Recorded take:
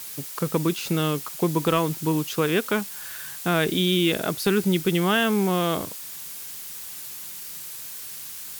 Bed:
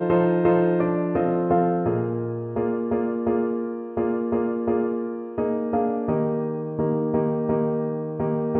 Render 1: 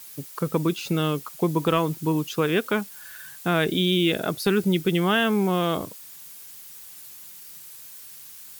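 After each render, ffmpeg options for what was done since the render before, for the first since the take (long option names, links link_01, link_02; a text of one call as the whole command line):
ffmpeg -i in.wav -af "afftdn=noise_reduction=8:noise_floor=-37" out.wav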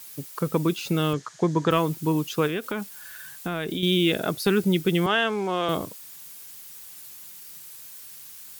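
ffmpeg -i in.wav -filter_complex "[0:a]asettb=1/sr,asplit=3[link_01][link_02][link_03];[link_01]atrim=end=1.134[link_04];[link_02]atrim=start=1.13:end=1.71,asetpts=PTS-STARTPTS,afade=type=in:duration=0.004:curve=qsin,afade=type=out:start_time=0.576:duration=0.004:curve=qsin,highpass=100,equalizer=frequency=110:width_type=q:width=4:gain=9,equalizer=frequency=1700:width_type=q:width=4:gain=10,equalizer=frequency=2600:width_type=q:width=4:gain=-6,equalizer=frequency=6600:width_type=q:width=4:gain=6,lowpass=frequency=6900:width=0.5412,lowpass=frequency=6900:width=1.3066[link_05];[link_03]atrim=start=1.706[link_06];[link_04][link_05]acrossfade=duration=0.004:curve1=hsin:curve2=qsin[link_07];[link_07][link_06]acrossfade=duration=0.004:curve1=qsin:curve2=hsin,asettb=1/sr,asplit=3[link_08][link_09][link_10];[link_08]atrim=end=2.474[link_11];[link_09]atrim=start=2.47:end=3.83,asetpts=PTS-STARTPTS,afade=type=in:duration=0.004:curve=qsin,afade=type=out:start_time=1.356:duration=0.004:curve=qsin,acompressor=threshold=-25dB:ratio=6:attack=3.2:release=140:knee=1:detection=peak[link_12];[link_10]atrim=start=3.826[link_13];[link_11][link_12]acrossfade=duration=0.004:curve1=hsin:curve2=qsin[link_14];[link_14][link_13]acrossfade=duration=0.004:curve1=qsin:curve2=hsin,asettb=1/sr,asplit=3[link_15][link_16][link_17];[link_15]atrim=end=5.064[link_18];[link_16]atrim=start=5.06:end=5.69,asetpts=PTS-STARTPTS,afade=type=in:duration=0.004:curve=qsin,afade=type=out:start_time=0.626:duration=0.004:curve=qsin,acrossover=split=320 8000:gain=0.224 1 0.0708[link_19][link_20][link_21];[link_19][link_20][link_21]amix=inputs=3:normalize=0[link_22];[link_17]atrim=start=5.686[link_23];[link_18][link_22]acrossfade=duration=0.004:curve1=hsin:curve2=qsin[link_24];[link_24][link_23]acrossfade=duration=0.004:curve1=qsin:curve2=hsin" out.wav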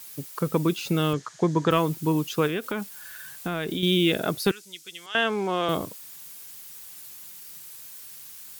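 ffmpeg -i in.wav -filter_complex "[0:a]asettb=1/sr,asplit=3[link_01][link_02][link_03];[link_01]atrim=end=3.284[link_04];[link_02]atrim=start=3.28:end=3.93,asetpts=PTS-STARTPTS,afade=type=in:duration=0.004:curve=qsin,afade=type=out:start_time=0.646:duration=0.004:curve=qsin,acrusher=bits=7:mix=0:aa=0.5[link_05];[link_03]atrim=start=3.926[link_06];[link_04][link_05]acrossfade=duration=0.004:curve1=hsin:curve2=qsin[link_07];[link_07][link_06]acrossfade=duration=0.004:curve1=qsin:curve2=hsin,asettb=1/sr,asplit=3[link_08][link_09][link_10];[link_08]atrim=end=4.514[link_11];[link_09]atrim=start=4.51:end=5.15,asetpts=PTS-STARTPTS,afade=type=in:duration=0.004:curve=qsin,afade=type=out:start_time=0.636:duration=0.004:curve=qsin,bandpass=frequency=6300:width_type=q:width=1.4[link_12];[link_10]atrim=start=5.146[link_13];[link_11][link_12]acrossfade=duration=0.004:curve1=hsin:curve2=qsin[link_14];[link_14][link_13]acrossfade=duration=0.004:curve1=qsin:curve2=hsin" out.wav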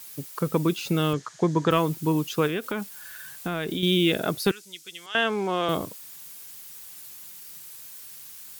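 ffmpeg -i in.wav -af anull out.wav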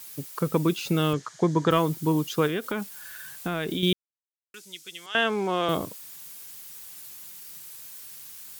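ffmpeg -i in.wav -filter_complex "[0:a]asettb=1/sr,asplit=3[link_01][link_02][link_03];[link_01]atrim=end=1.304[link_04];[link_02]atrim=start=1.3:end=2.73,asetpts=PTS-STARTPTS,afade=type=in:duration=0.004:curve=qsin,afade=type=out:start_time=1.426:duration=0.004:curve=qsin,bandreject=frequency=2600:width=13[link_05];[link_03]atrim=start=2.726[link_06];[link_04][link_05]acrossfade=duration=0.004:curve1=hsin:curve2=qsin[link_07];[link_07][link_06]acrossfade=duration=0.004:curve1=qsin:curve2=hsin,asplit=3[link_08][link_09][link_10];[link_08]atrim=end=3.93,asetpts=PTS-STARTPTS,afade=type=out:start_time=3.926:duration=0.004:curve=hsin[link_11];[link_09]atrim=start=3.93:end=4.54,asetpts=PTS-STARTPTS,volume=0[link_12];[link_10]atrim=start=4.54,asetpts=PTS-STARTPTS,afade=type=in:duration=0.004:curve=hsin[link_13];[link_11][link_12][link_13]concat=n=3:v=0:a=1" out.wav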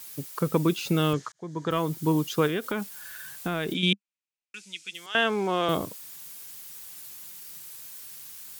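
ffmpeg -i in.wav -filter_complex "[0:a]asplit=3[link_01][link_02][link_03];[link_01]afade=type=out:start_time=3.73:duration=0.02[link_04];[link_02]highpass=190,equalizer=frequency=200:width_type=q:width=4:gain=6,equalizer=frequency=390:width_type=q:width=4:gain=-9,equalizer=frequency=640:width_type=q:width=4:gain=-9,equalizer=frequency=1100:width_type=q:width=4:gain=-4,equalizer=frequency=2500:width_type=q:width=4:gain=10,lowpass=frequency=8900:width=0.5412,lowpass=frequency=8900:width=1.3066,afade=type=in:start_time=3.73:duration=0.02,afade=type=out:start_time=4.93:duration=0.02[link_05];[link_03]afade=type=in:start_time=4.93:duration=0.02[link_06];[link_04][link_05][link_06]amix=inputs=3:normalize=0,asplit=2[link_07][link_08];[link_07]atrim=end=1.32,asetpts=PTS-STARTPTS,afade=type=out:start_time=1.316:duration=0.004:curve=hsin[link_09];[link_08]atrim=start=1.32,asetpts=PTS-STARTPTS,afade=type=in:duration=0.77[link_10];[link_09][link_10]concat=n=2:v=0:a=1" out.wav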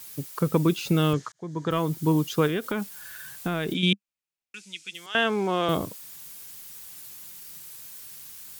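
ffmpeg -i in.wav -af "lowshelf=frequency=190:gain=5" out.wav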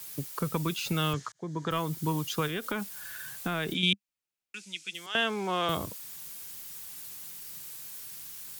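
ffmpeg -i in.wav -filter_complex "[0:a]acrossover=split=120|740|2600[link_01][link_02][link_03][link_04];[link_02]acompressor=threshold=-33dB:ratio=6[link_05];[link_03]alimiter=limit=-24dB:level=0:latency=1:release=291[link_06];[link_01][link_05][link_06][link_04]amix=inputs=4:normalize=0" out.wav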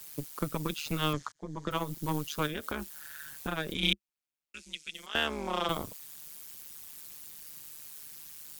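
ffmpeg -i in.wav -filter_complex "[0:a]asplit=2[link_01][link_02];[link_02]acrusher=bits=3:mix=0:aa=0.5,volume=-11.5dB[link_03];[link_01][link_03]amix=inputs=2:normalize=0,tremolo=f=150:d=0.947" out.wav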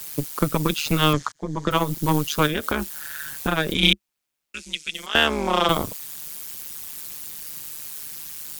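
ffmpeg -i in.wav -af "volume=11.5dB,alimiter=limit=-3dB:level=0:latency=1" out.wav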